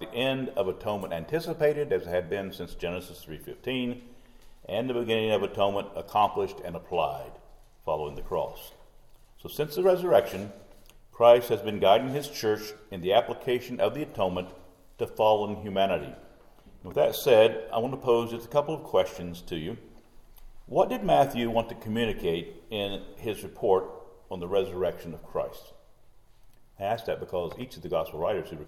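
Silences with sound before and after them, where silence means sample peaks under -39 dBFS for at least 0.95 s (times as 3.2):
25.66–26.8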